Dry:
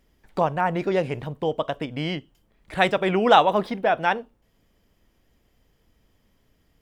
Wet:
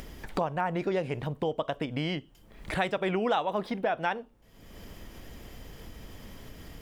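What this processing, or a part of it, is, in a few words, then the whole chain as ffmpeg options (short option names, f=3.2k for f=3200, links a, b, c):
upward and downward compression: -af "acompressor=mode=upward:threshold=-22dB:ratio=2.5,acompressor=threshold=-21dB:ratio=5,volume=-3.5dB"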